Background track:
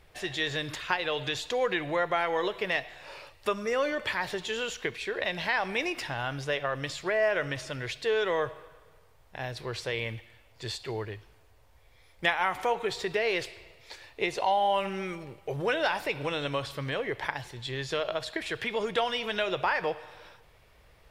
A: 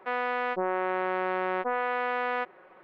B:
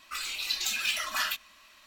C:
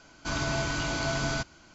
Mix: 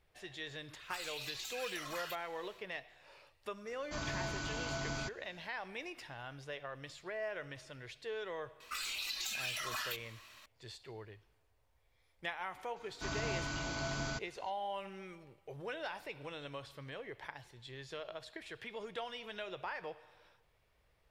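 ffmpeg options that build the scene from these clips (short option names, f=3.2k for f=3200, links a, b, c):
-filter_complex "[2:a]asplit=2[a][b];[3:a]asplit=2[c][d];[0:a]volume=-14.5dB[e];[a]acompressor=threshold=-36dB:ratio=6:attack=3.2:release=140:knee=1:detection=peak[f];[b]acompressor=threshold=-35dB:ratio=6:attack=3.2:release=140:knee=1:detection=peak[g];[f]atrim=end=1.86,asetpts=PTS-STARTPTS,volume=-5.5dB,afade=t=in:d=0.1,afade=t=out:st=1.76:d=0.1,adelay=790[h];[c]atrim=end=1.74,asetpts=PTS-STARTPTS,volume=-10dB,afade=t=in:d=0.004:c=hsin,afade=t=out:st=1.736:d=0.004:c=hsin,adelay=3660[i];[g]atrim=end=1.86,asetpts=PTS-STARTPTS,volume=-1dB,afade=t=in:d=0.004:c=hsin,afade=t=out:st=1.856:d=0.004:c=hsin,adelay=8600[j];[d]atrim=end=1.74,asetpts=PTS-STARTPTS,volume=-9dB,afade=t=in:d=0.004:c=hsin,afade=t=out:st=1.736:d=0.004:c=hsin,adelay=12760[k];[e][h][i][j][k]amix=inputs=5:normalize=0"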